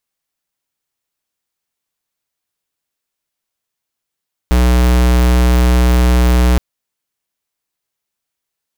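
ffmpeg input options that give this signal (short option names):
-f lavfi -i "aevalsrc='0.316*(2*lt(mod(61.3*t,1),0.5)-1)':d=2.07:s=44100"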